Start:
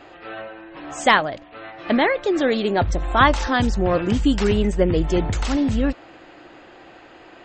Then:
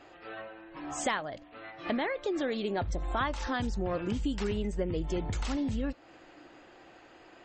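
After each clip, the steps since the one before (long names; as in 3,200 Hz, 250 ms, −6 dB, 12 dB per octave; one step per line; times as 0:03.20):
noise reduction from a noise print of the clip's start 6 dB
downward compressor 3 to 1, threshold −28 dBFS, peak gain reduction 14 dB
level −3.5 dB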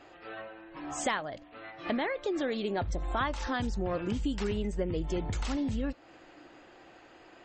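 no processing that can be heard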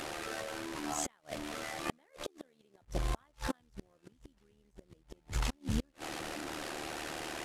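linear delta modulator 64 kbit/s, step −36 dBFS
gate with flip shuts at −24 dBFS, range −37 dB
amplitude modulation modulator 76 Hz, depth 55%
level +4 dB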